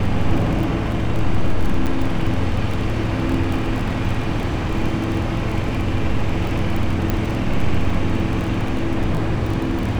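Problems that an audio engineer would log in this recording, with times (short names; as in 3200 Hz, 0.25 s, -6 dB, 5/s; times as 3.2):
crackle 22/s -23 dBFS
1.86–1.87 gap 7.3 ms
7.1 pop -8 dBFS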